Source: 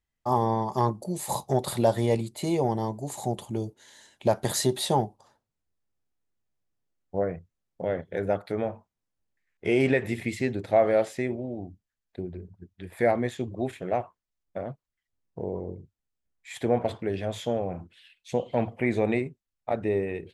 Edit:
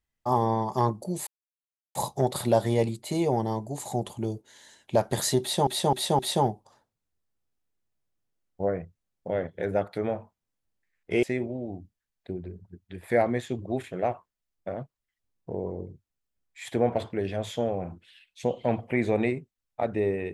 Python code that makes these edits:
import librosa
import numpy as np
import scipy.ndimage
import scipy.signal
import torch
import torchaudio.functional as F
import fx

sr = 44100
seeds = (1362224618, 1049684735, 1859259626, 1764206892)

y = fx.edit(x, sr, fx.insert_silence(at_s=1.27, length_s=0.68),
    fx.repeat(start_s=4.73, length_s=0.26, count=4),
    fx.cut(start_s=9.77, length_s=1.35), tone=tone)